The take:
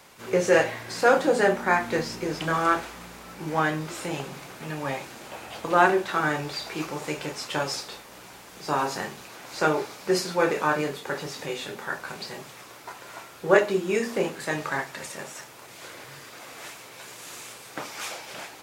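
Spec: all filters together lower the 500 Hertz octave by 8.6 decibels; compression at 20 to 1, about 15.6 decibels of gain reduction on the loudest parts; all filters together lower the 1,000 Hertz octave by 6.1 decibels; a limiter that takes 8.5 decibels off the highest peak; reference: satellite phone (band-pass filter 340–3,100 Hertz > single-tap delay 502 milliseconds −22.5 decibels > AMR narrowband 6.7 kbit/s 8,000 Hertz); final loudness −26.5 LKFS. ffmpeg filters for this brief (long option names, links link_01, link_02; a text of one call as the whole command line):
ffmpeg -i in.wav -af "equalizer=frequency=500:width_type=o:gain=-8,equalizer=frequency=1000:width_type=o:gain=-5.5,acompressor=threshold=-33dB:ratio=20,alimiter=level_in=4.5dB:limit=-24dB:level=0:latency=1,volume=-4.5dB,highpass=340,lowpass=3100,aecho=1:1:502:0.075,volume=19.5dB" -ar 8000 -c:a libopencore_amrnb -b:a 6700 out.amr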